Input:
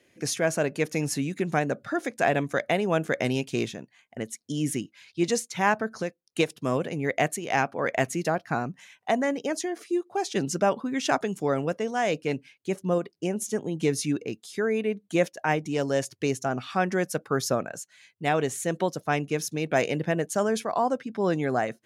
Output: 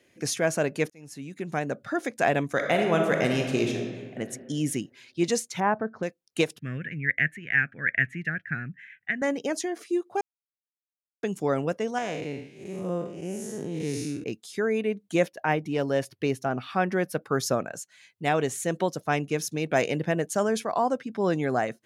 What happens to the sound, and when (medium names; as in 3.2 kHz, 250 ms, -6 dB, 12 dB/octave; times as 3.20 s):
0.90–1.98 s: fade in
2.51–4.20 s: reverb throw, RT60 1.7 s, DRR 2 dB
5.60–6.03 s: low-pass 1.3 kHz
6.59–9.22 s: FFT filter 150 Hz 0 dB, 1 kHz -29 dB, 1.7 kHz +11 dB, 2.6 kHz -2 dB, 4.8 kHz -25 dB
10.21–11.23 s: mute
11.98–14.24 s: spectral blur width 198 ms
15.26–17.25 s: peaking EQ 7.1 kHz -12.5 dB 0.79 oct